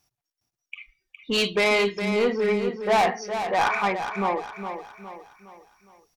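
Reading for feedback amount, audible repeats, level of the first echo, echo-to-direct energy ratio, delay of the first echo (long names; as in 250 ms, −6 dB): 43%, 4, −8.5 dB, −7.5 dB, 412 ms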